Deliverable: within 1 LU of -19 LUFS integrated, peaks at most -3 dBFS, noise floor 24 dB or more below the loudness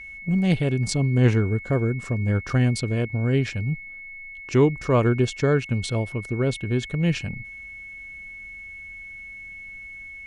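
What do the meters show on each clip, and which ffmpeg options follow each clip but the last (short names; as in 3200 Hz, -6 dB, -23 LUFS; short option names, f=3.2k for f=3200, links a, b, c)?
steady tone 2200 Hz; tone level -37 dBFS; loudness -23.5 LUFS; peak -7.5 dBFS; loudness target -19.0 LUFS
-> -af "bandreject=f=2.2k:w=30"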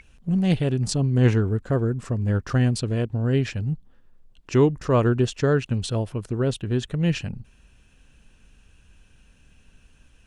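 steady tone none; loudness -23.5 LUFS; peak -8.0 dBFS; loudness target -19.0 LUFS
-> -af "volume=4.5dB"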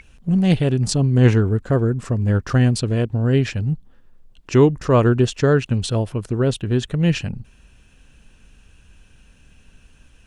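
loudness -19.0 LUFS; peak -3.5 dBFS; noise floor -52 dBFS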